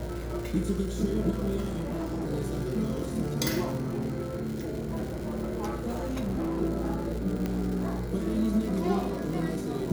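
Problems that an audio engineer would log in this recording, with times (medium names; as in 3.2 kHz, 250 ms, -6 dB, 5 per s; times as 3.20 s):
crackle 240 per s -35 dBFS
1.64–2.30 s: clipped -28.5 dBFS
3.81–6.62 s: clipped -26.5 dBFS
7.46 s: pop -18 dBFS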